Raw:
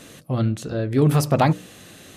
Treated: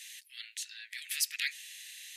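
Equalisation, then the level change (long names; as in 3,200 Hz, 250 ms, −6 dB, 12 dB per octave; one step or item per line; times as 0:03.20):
Butterworth high-pass 1,800 Hz 72 dB per octave
0.0 dB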